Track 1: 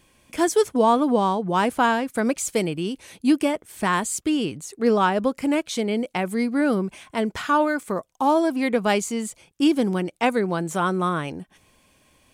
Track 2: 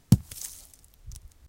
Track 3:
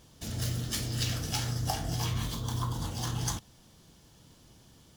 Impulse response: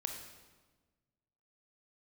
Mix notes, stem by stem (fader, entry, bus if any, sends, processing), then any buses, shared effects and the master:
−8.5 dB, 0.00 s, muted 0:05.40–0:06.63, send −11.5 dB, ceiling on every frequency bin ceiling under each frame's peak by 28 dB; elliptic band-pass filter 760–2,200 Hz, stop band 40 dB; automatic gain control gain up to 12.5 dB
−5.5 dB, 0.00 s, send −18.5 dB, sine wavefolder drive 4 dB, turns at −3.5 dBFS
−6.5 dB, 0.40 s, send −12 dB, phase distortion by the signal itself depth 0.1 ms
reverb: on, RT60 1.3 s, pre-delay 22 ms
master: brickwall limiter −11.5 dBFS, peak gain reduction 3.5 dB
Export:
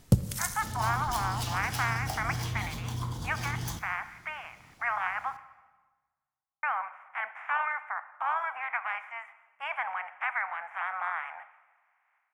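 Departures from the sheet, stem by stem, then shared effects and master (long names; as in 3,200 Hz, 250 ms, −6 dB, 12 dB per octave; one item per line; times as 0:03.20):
stem 1 −8.5 dB → −19.5 dB
reverb return +7.5 dB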